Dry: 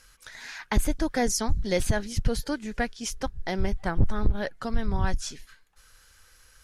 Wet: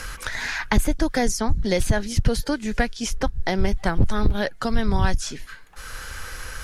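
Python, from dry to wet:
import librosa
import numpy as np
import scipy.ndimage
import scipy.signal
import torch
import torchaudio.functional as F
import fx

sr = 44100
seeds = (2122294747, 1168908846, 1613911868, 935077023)

y = fx.band_squash(x, sr, depth_pct=70)
y = y * librosa.db_to_amplitude(5.0)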